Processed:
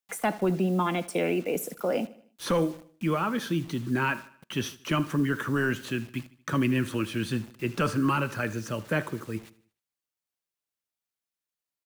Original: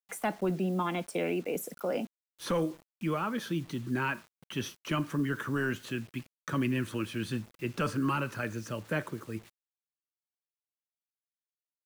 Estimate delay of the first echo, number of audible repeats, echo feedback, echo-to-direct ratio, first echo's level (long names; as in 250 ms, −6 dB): 77 ms, 3, 46%, −18.0 dB, −19.0 dB